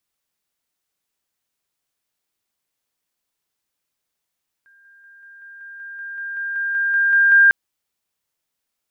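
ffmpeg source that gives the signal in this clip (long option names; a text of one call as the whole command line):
ffmpeg -f lavfi -i "aevalsrc='pow(10,(-50+3*floor(t/0.19))/20)*sin(2*PI*1600*t)':duration=2.85:sample_rate=44100" out.wav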